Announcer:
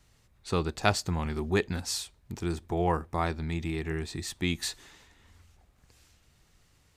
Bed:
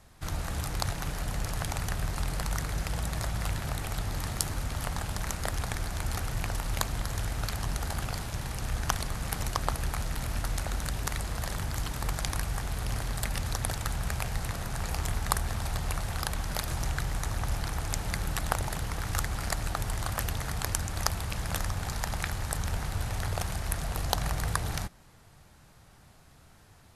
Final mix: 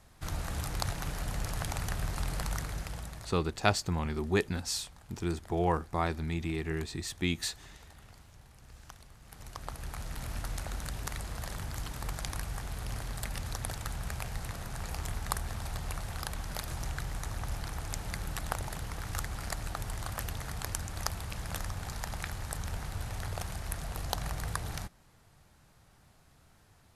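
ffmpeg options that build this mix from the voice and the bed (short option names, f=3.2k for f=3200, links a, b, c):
-filter_complex "[0:a]adelay=2800,volume=-1.5dB[a];[1:a]volume=14dB,afade=t=out:st=2.45:d=0.96:silence=0.105925,afade=t=in:st=9.24:d=1.04:silence=0.149624[b];[a][b]amix=inputs=2:normalize=0"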